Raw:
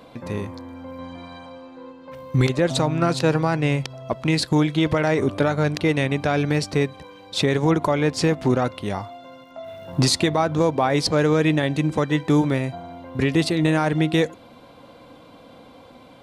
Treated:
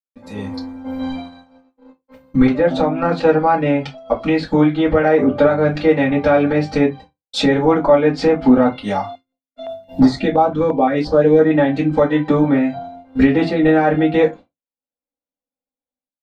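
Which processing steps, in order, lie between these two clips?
gate -36 dBFS, range -60 dB; spectral noise reduction 8 dB; low-pass that closes with the level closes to 2.1 kHz, closed at -17.5 dBFS; peaking EQ 780 Hz +5 dB 0.8 oct; level rider gain up to 16.5 dB; reverberation, pre-delay 3 ms, DRR -6 dB; 9.15–11.51 s: step-sequenced notch 5.8 Hz 720–2700 Hz; trim -10 dB

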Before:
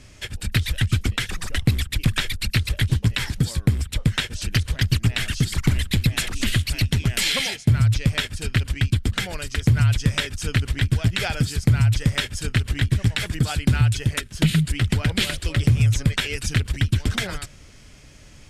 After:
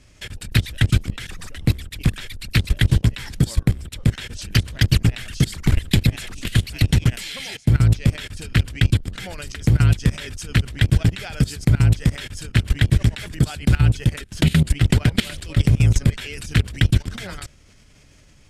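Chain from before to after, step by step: octave divider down 1 oct, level -6 dB; level held to a coarse grid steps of 19 dB; trim +6 dB

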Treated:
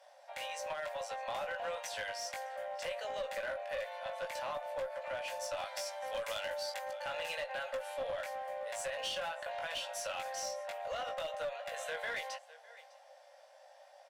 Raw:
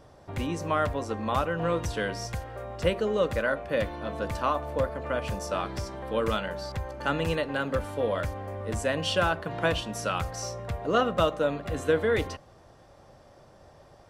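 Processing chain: rippled Chebyshev high-pass 530 Hz, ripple 3 dB; delay 605 ms -22.5 dB; peak limiter -24.5 dBFS, peak gain reduction 10 dB; peaking EQ 1.2 kHz -10 dB 0.4 oct; doubling 19 ms -4 dB; compression 5:1, threshold -32 dBFS, peak gain reduction 6 dB; one-sided clip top -34 dBFS; 5.57–6.92 s: treble shelf 4.9 kHz +7.5 dB; trim -1.5 dB

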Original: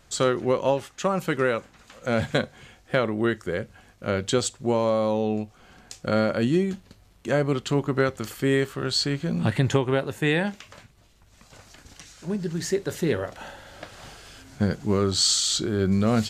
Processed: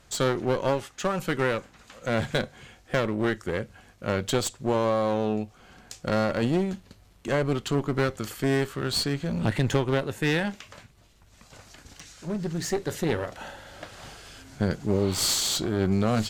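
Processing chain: one-sided clip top -29.5 dBFS; spectral replace 14.94–15.24 s, 660–4500 Hz both

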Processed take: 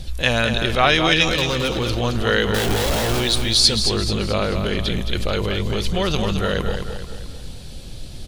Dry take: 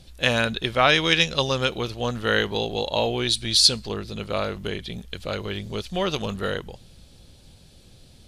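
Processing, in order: 2.54–3.20 s: one-bit comparator; bass shelf 75 Hz +7.5 dB; in parallel at +0.5 dB: compressor with a negative ratio -33 dBFS, ratio -1; on the sum: flange 0.33 Hz, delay 0.5 ms, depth 3.8 ms, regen +78%; 1.29–1.85 s: hard clipper -23.5 dBFS, distortion -20 dB; on a send: feedback delay 218 ms, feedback 45%, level -7 dB; on the sum: trim +5.5 dB

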